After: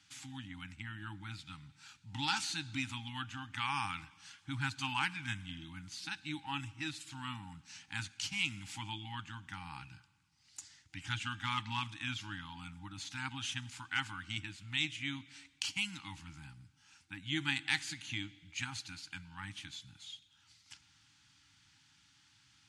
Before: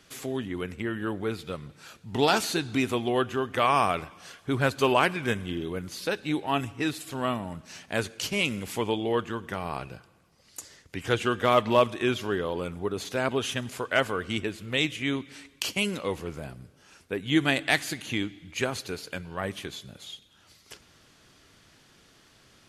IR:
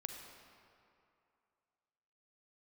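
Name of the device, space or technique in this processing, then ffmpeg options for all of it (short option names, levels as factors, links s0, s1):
car door speaker: -af "afftfilt=real='re*(1-between(b*sr/4096,330,780))':imag='im*(1-between(b*sr/4096,330,780))':win_size=4096:overlap=0.75,highpass=80,equalizer=f=110:t=q:w=4:g=4,equalizer=f=220:t=q:w=4:g=-7,equalizer=f=350:t=q:w=4:g=-6,equalizer=f=1100:t=q:w=4:g=-9,equalizer=f=1800:t=q:w=4:g=-3,lowpass=f=8700:w=0.5412,lowpass=f=8700:w=1.3066,equalizer=f=240:w=0.38:g=-5,volume=0.501"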